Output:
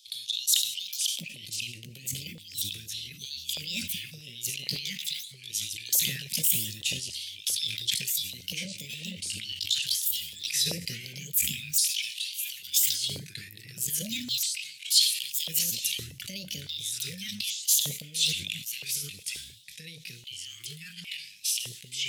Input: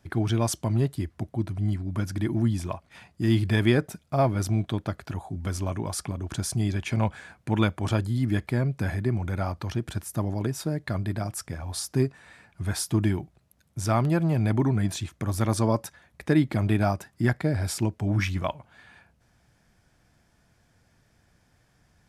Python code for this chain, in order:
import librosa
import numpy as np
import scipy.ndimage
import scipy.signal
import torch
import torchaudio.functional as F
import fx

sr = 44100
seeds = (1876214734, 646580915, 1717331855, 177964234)

y = fx.pitch_ramps(x, sr, semitones=8.5, every_ms=1309)
y = scipy.signal.sosfilt(scipy.signal.cheby2(4, 70, [500.0, 1200.0], 'bandstop', fs=sr, output='sos'), y)
y = fx.peak_eq(y, sr, hz=80.0, db=6.5, octaves=0.69)
y = fx.over_compress(y, sr, threshold_db=-33.0, ratio=-1.0)
y = fx.rev_double_slope(y, sr, seeds[0], early_s=0.64, late_s=1.7, knee_db=-23, drr_db=16.5)
y = fx.filter_lfo_highpass(y, sr, shape='square', hz=0.42, low_hz=580.0, high_hz=3500.0, q=4.0)
y = fx.echo_pitch(y, sr, ms=420, semitones=-3, count=2, db_per_echo=-6.0)
y = fx.sustainer(y, sr, db_per_s=77.0)
y = y * librosa.db_to_amplitude(7.0)